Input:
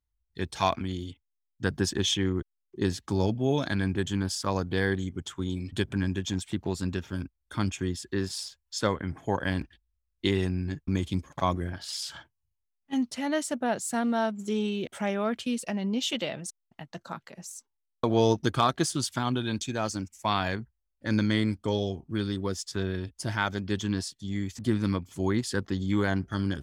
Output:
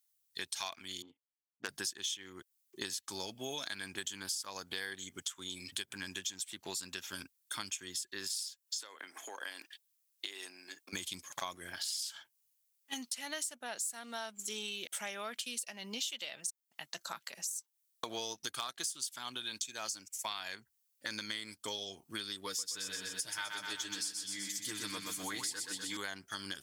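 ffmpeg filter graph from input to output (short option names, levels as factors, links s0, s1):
-filter_complex "[0:a]asettb=1/sr,asplit=3[s0][s1][s2];[s0]atrim=end=1.024[s3];[s1]atrim=start=1.02:end=1.69,asetpts=PTS-STARTPTS,afade=t=in:d=0.004:c=qsin,afade=t=out:st=0.666:d=0.004:c=qsin,highpass=220,adynamicsmooth=sensitivity=1.5:basefreq=510,asoftclip=type=hard:threshold=0.158[s4];[s2]atrim=start=1.686[s5];[s3][s4]acrossfade=d=0.004:c1=hsin:c2=qsin[s6];[s6][s5]acrossfade=d=0.004:c1=qsin:c2=hsin,asettb=1/sr,asplit=3[s7][s8][s9];[s7]atrim=end=8.604[s10];[s8]atrim=start=8.6:end=10.93,asetpts=PTS-STARTPTS,afade=t=in:d=0.004:c=qsin,afade=t=out:st=2.326:d=0.004:c=qsin,acompressor=threshold=0.02:ratio=8:attack=3.2:release=140:knee=1:detection=peak,highpass=f=290:w=0.5412,highpass=f=290:w=1.3066[s11];[s9]atrim=start=10.926[s12];[s10][s11]acrossfade=d=0.004:c1=hsin:c2=qsin[s13];[s13][s12]acrossfade=d=0.004:c1=qsin:c2=hsin,asettb=1/sr,asplit=3[s14][s15][s16];[s14]atrim=end=22.464[s17];[s15]atrim=start=22.46:end=25.97,asetpts=PTS-STARTPTS,afade=t=in:d=0.004:c=qsin,afade=t=out:st=3.506:d=0.004:c=qsin,aecho=1:1:6.6:0.72,atrim=end_sample=154791,aecho=1:1:125|250|375|500|625|750|875|1000:0.531|0.303|0.172|0.0983|0.056|0.0319|0.0182|0.0104,atrim=end_sample=154791[s18];[s16]atrim=start=25.966[s19];[s17][s18]acrossfade=d=0.004:c1=hsin:c2=qsin[s20];[s20][s19]acrossfade=d=0.004:c1=qsin:c2=hsin,aderivative,acompressor=threshold=0.00224:ratio=6,volume=5.96"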